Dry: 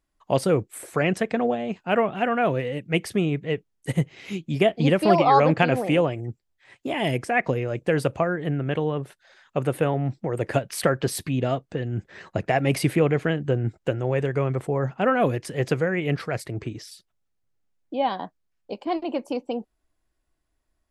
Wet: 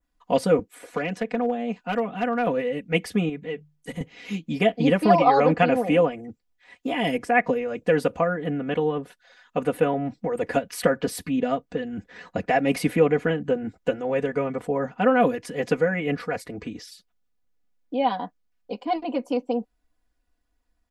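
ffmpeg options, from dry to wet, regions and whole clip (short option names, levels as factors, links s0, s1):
-filter_complex "[0:a]asettb=1/sr,asplit=3[s0][s1][s2];[s0]atrim=end=0.594[s3];[s1]atrim=start=0.59:end=2.47,asetpts=PTS-STARTPTS,afade=t=in:d=0.004:c=qsin,afade=t=out:st=1.876:d=0.004:c=qsin,acrossover=split=100|400|5600[s4][s5][s6][s7];[s4]acompressor=threshold=0.001:ratio=3[s8];[s5]acompressor=threshold=0.0282:ratio=3[s9];[s6]acompressor=threshold=0.0398:ratio=3[s10];[s7]acompressor=threshold=0.00282:ratio=3[s11];[s8][s9][s10][s11]amix=inputs=4:normalize=0,asoftclip=type=hard:threshold=0.112[s12];[s2]atrim=start=2.466[s13];[s3][s12]acrossfade=d=0.004:c1=hsin:c2=qsin[s14];[s14][s13]acrossfade=d=0.004:c1=qsin:c2=hsin,asettb=1/sr,asplit=3[s15][s16][s17];[s15]atrim=end=3.294[s18];[s16]atrim=start=3.29:end=4.01,asetpts=PTS-STARTPTS,afade=t=in:d=0.004:c=qsin,afade=t=out:st=0.716:d=0.004:c=qsin,bandreject=f=50:t=h:w=6,bandreject=f=100:t=h:w=6,bandreject=f=150:t=h:w=6,acompressor=threshold=0.0224:ratio=2:attack=3.2:release=140:knee=1:detection=peak[s19];[s17]atrim=start=4.006[s20];[s18][s19]acrossfade=d=0.004:c1=hsin:c2=qsin[s21];[s21][s20]acrossfade=d=0.004:c1=qsin:c2=hsin,equalizer=f=9600:t=o:w=0.85:g=-4.5,aecho=1:1:4.1:0.96,adynamicequalizer=threshold=0.00794:dfrequency=4200:dqfactor=1:tfrequency=4200:tqfactor=1:attack=5:release=100:ratio=0.375:range=2.5:mode=cutabove:tftype=bell,volume=0.794"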